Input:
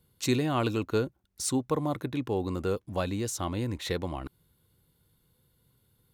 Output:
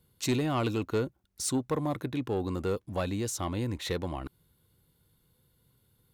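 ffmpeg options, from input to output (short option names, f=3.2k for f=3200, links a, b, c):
-af "asoftclip=type=tanh:threshold=-20dB"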